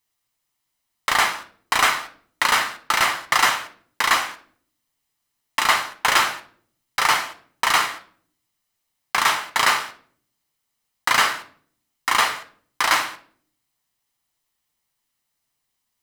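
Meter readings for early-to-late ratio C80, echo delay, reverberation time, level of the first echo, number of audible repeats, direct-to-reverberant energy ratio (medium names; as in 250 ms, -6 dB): 19.0 dB, no echo, 0.50 s, no echo, no echo, 6.5 dB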